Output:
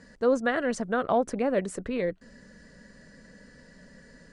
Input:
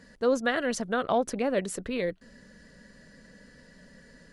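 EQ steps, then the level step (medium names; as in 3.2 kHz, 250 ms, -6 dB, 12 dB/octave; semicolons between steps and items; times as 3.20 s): dynamic bell 5.3 kHz, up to -6 dB, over -49 dBFS, Q 0.7; steep low-pass 9.5 kHz 48 dB/octave; peaking EQ 3.3 kHz -4 dB 0.85 oct; +1.5 dB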